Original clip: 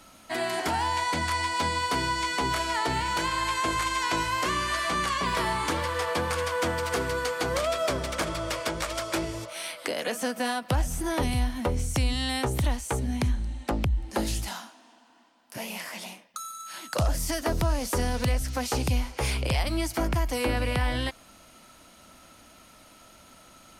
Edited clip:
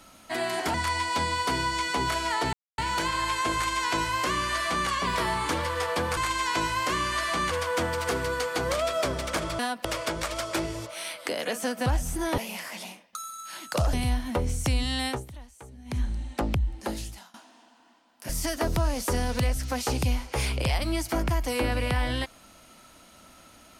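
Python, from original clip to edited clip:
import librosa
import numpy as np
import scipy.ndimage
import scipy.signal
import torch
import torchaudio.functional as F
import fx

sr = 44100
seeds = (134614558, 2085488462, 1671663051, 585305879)

y = fx.edit(x, sr, fx.cut(start_s=0.74, length_s=0.44),
    fx.insert_silence(at_s=2.97, length_s=0.25),
    fx.duplicate(start_s=3.73, length_s=1.34, to_s=6.36),
    fx.move(start_s=10.45, length_s=0.26, to_s=8.44),
    fx.fade_down_up(start_s=12.37, length_s=0.97, db=-18.0, fade_s=0.19),
    fx.fade_out_to(start_s=13.89, length_s=0.75, floor_db=-22.5),
    fx.move(start_s=15.59, length_s=1.55, to_s=11.23), tone=tone)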